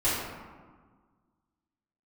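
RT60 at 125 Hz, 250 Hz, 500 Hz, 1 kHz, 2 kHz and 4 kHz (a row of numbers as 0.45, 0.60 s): 1.9, 2.0, 1.5, 1.6, 1.2, 0.70 s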